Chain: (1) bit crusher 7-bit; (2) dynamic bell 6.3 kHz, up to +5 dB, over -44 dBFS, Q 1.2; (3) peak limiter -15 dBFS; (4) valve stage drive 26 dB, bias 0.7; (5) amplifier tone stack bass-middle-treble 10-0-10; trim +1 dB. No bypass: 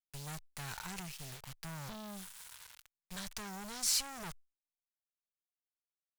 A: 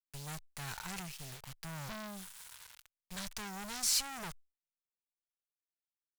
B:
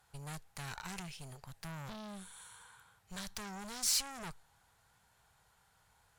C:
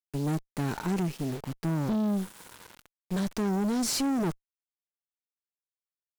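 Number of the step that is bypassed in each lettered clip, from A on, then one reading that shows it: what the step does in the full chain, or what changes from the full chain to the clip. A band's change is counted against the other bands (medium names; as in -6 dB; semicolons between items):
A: 3, mean gain reduction 1.5 dB; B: 1, distortion -27 dB; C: 5, 250 Hz band +14.0 dB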